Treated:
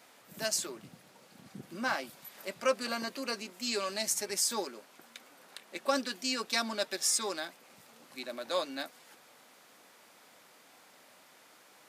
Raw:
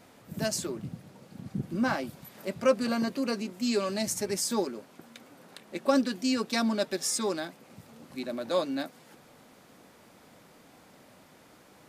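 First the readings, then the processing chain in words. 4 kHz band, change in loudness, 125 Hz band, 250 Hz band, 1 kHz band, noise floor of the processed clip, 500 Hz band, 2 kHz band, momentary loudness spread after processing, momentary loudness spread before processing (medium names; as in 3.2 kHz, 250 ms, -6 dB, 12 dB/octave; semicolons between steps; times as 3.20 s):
+1.0 dB, -3.0 dB, -15.0 dB, -11.5 dB, -2.0 dB, -60 dBFS, -6.0 dB, 0.0 dB, 21 LU, 15 LU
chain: high-pass 1.1 kHz 6 dB/octave; trim +1.5 dB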